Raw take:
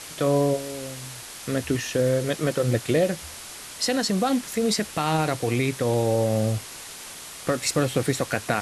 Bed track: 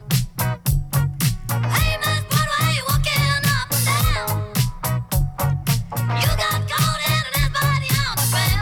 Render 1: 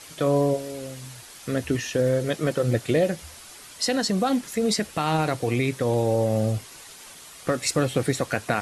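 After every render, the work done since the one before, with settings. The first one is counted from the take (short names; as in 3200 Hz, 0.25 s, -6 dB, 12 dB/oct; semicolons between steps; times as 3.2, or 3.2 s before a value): denoiser 7 dB, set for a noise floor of -40 dBFS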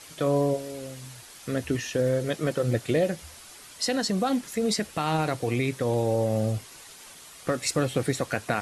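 gain -2.5 dB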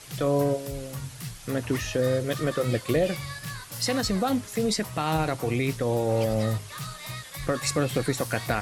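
add bed track -18 dB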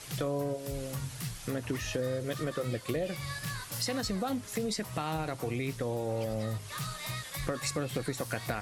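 compressor 3:1, threshold -32 dBFS, peak gain reduction 10 dB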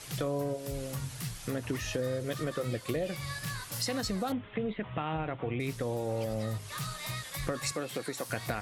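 4.32–5.6 steep low-pass 3500 Hz 96 dB/oct; 7.72–8.3 Bessel high-pass 280 Hz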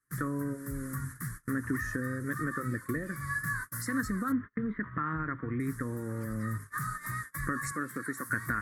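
gate -40 dBFS, range -36 dB; EQ curve 180 Hz 0 dB, 270 Hz +5 dB, 770 Hz -21 dB, 1100 Hz +5 dB, 1800 Hz +10 dB, 2700 Hz -28 dB, 9600 Hz +1 dB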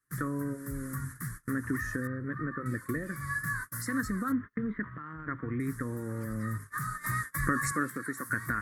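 2.07–2.66 air absorption 490 m; 4.87–5.27 compressor 4:1, threshold -40 dBFS; 7.04–7.9 gain +4.5 dB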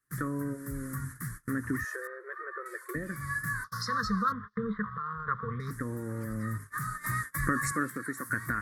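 1.84–2.95 brick-wall FIR high-pass 350 Hz; 3.64–5.71 EQ curve 140 Hz 0 dB, 210 Hz +4 dB, 310 Hz -29 dB, 450 Hz +7 dB, 720 Hz -13 dB, 1100 Hz +13 dB, 2500 Hz -11 dB, 3700 Hz +12 dB, 5300 Hz +12 dB, 7800 Hz -11 dB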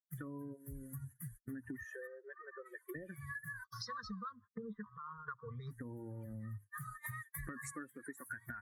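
per-bin expansion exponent 2; compressor 12:1, threshold -42 dBFS, peak gain reduction 17 dB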